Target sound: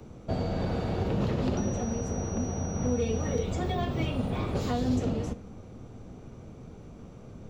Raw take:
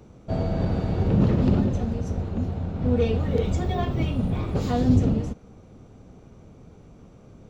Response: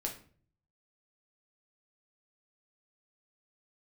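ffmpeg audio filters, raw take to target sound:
-filter_complex "[0:a]asettb=1/sr,asplit=3[link_01][link_02][link_03];[link_01]atrim=end=1.574[link_04];[link_02]atrim=start=1.57:end=3.43,asetpts=PTS-STARTPTS,afade=type=in:duration=0.004:curve=qsin,afade=type=out:start_time=1.856:duration=0.004:curve=qsin,aeval=exprs='val(0)+0.0112*sin(2*PI*5800*n/s)':channel_layout=same[link_05];[link_03]atrim=start=3.426[link_06];[link_04][link_05]acrossfade=duration=0.004:curve1=hsin:curve2=qsin[link_07];[link_07][link_06]acrossfade=duration=0.004:curve1=qsin:curve2=hsin,acrossover=split=130|370|3000[link_08][link_09][link_10][link_11];[link_08]acompressor=threshold=-36dB:ratio=4[link_12];[link_09]acompressor=threshold=-37dB:ratio=4[link_13];[link_10]acompressor=threshold=-34dB:ratio=4[link_14];[link_11]acompressor=threshold=-47dB:ratio=4[link_15];[link_12][link_13][link_14][link_15]amix=inputs=4:normalize=0,asplit=2[link_16][link_17];[1:a]atrim=start_sample=2205,asetrate=33516,aresample=44100[link_18];[link_17][link_18]afir=irnorm=-1:irlink=0,volume=-11.5dB[link_19];[link_16][link_19]amix=inputs=2:normalize=0"

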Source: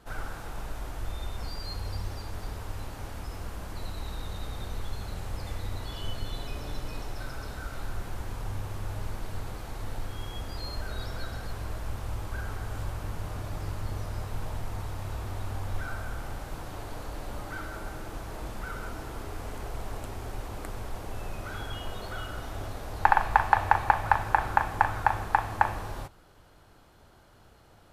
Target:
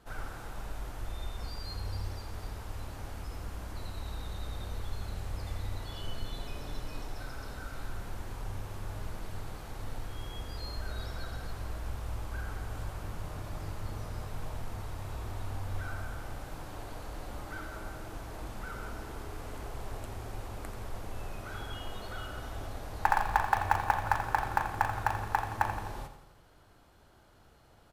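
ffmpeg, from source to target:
ffmpeg -i in.wav -filter_complex "[0:a]asplit=2[link_01][link_02];[link_02]aeval=exprs='(mod(8.91*val(0)+1,2)-1)/8.91':channel_layout=same,volume=-12dB[link_03];[link_01][link_03]amix=inputs=2:normalize=0,aecho=1:1:85|170|255|340|425|510:0.282|0.161|0.0916|0.0522|0.0298|0.017,volume=-6dB" out.wav

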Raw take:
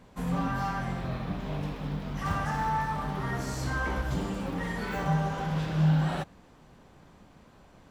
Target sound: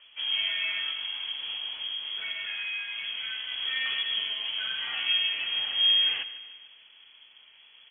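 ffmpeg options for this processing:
ffmpeg -i in.wav -filter_complex "[0:a]asettb=1/sr,asplit=3[link_01][link_02][link_03];[link_01]atrim=end=0.904[link_04];[link_02]atrim=start=0.9:end=3.51,asetpts=PTS-STARTPTS,afade=type=in:duration=0.004:curve=qsin,afade=type=out:start_time=2.606:duration=0.004:curve=qsin,acompressor=threshold=-31dB:ratio=6[link_05];[link_03]atrim=start=3.506[link_06];[link_04][link_05]acrossfade=duration=0.004:curve1=hsin:curve2=qsin[link_07];[link_07][link_06]acrossfade=duration=0.004:curve1=qsin:curve2=hsin,aecho=1:1:148|296|444|592|740:0.188|0.0979|0.0509|0.0265|0.0138,lowpass=frequency=2900:width_type=q:width=0.5098,lowpass=frequency=2900:width_type=q:width=0.6013,lowpass=frequency=2900:width_type=q:width=0.9,lowpass=frequency=2900:width_type=q:width=2.563,afreqshift=-3400" out.wav

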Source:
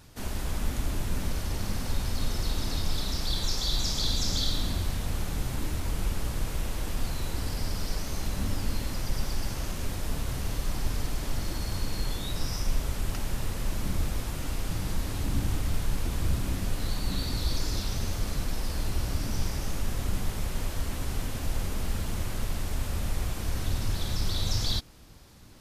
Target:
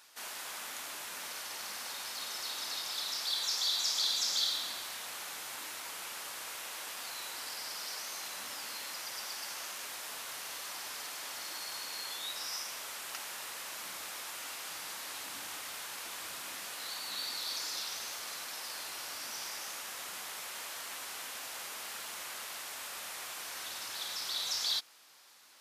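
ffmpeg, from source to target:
ffmpeg -i in.wav -af "highpass=1000" out.wav

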